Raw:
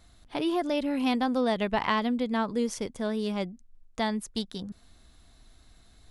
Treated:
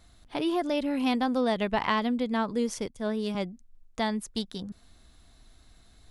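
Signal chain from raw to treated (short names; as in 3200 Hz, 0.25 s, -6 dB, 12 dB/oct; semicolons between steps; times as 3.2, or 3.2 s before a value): 2.88–3.35 three-band expander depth 70%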